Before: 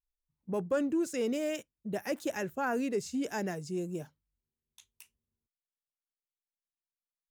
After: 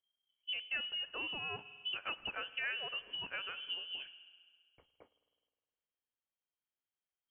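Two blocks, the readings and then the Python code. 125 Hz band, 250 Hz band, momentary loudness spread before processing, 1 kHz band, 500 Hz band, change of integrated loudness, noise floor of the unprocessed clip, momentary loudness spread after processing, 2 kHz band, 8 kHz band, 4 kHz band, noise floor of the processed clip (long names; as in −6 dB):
−17.5 dB, −26.5 dB, 9 LU, −9.0 dB, −20.5 dB, −5.0 dB, below −85 dBFS, 6 LU, +2.0 dB, below −35 dB, +12.0 dB, below −85 dBFS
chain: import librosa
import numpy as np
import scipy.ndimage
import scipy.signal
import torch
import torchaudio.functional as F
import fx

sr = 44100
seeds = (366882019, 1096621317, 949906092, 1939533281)

y = fx.freq_invert(x, sr, carrier_hz=3200)
y = fx.rev_spring(y, sr, rt60_s=1.8, pass_ms=(51,), chirp_ms=65, drr_db=16.5)
y = fx.env_lowpass_down(y, sr, base_hz=1600.0, full_db=-31.5)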